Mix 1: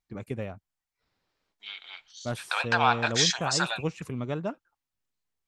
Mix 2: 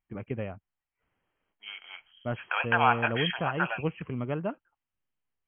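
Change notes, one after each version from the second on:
master: add brick-wall FIR low-pass 3.3 kHz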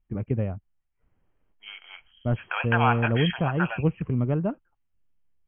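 first voice: add tilt EQ -3.5 dB/octave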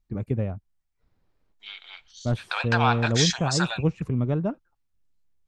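master: remove brick-wall FIR low-pass 3.3 kHz

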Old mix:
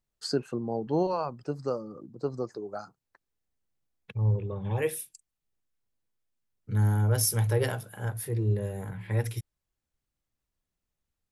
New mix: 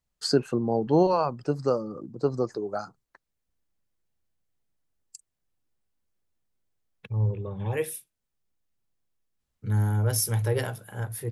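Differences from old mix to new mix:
first voice +6.0 dB; second voice: entry +2.95 s

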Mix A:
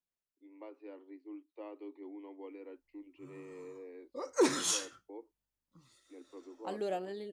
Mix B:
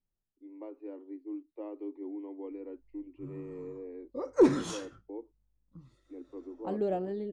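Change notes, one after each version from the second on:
master: add tilt EQ -4.5 dB/octave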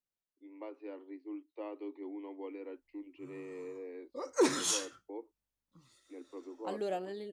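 first voice +4.0 dB; master: add tilt EQ +4.5 dB/octave

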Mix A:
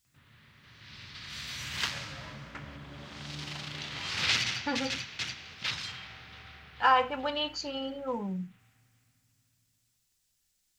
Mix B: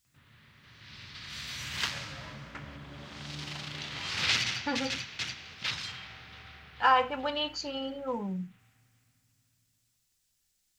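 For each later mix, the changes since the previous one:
no change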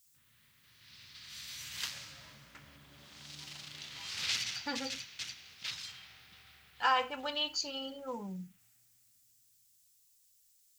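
speech +6.5 dB; master: add pre-emphasis filter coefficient 0.8

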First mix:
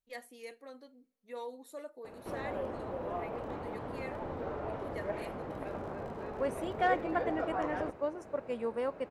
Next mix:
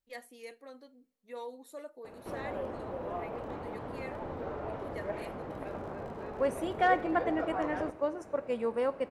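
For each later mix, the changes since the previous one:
second voice: send on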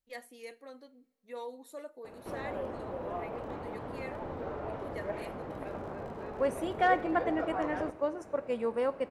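first voice: send +6.0 dB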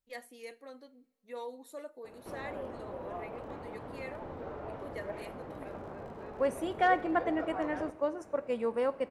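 background -3.5 dB

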